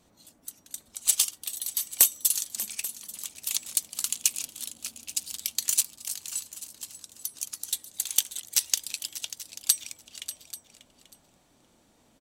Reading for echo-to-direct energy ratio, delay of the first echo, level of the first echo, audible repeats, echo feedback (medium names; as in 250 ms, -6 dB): -13.0 dB, 590 ms, -14.5 dB, 3, no regular repeats